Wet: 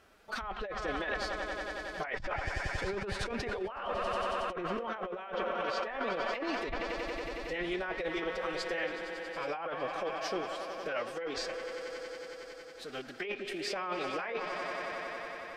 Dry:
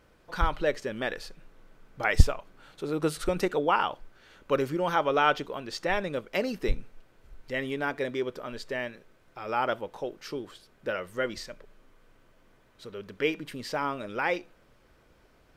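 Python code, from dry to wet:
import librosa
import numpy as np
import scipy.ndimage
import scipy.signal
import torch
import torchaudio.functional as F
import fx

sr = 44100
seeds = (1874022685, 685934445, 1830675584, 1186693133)

y = fx.low_shelf(x, sr, hz=330.0, db=-10.5)
y = fx.echo_swell(y, sr, ms=92, loudest=5, wet_db=-15.5)
y = fx.pitch_keep_formants(y, sr, semitones=4.5)
y = fx.env_lowpass_down(y, sr, base_hz=2600.0, full_db=-26.0)
y = fx.over_compress(y, sr, threshold_db=-35.0, ratio=-1.0)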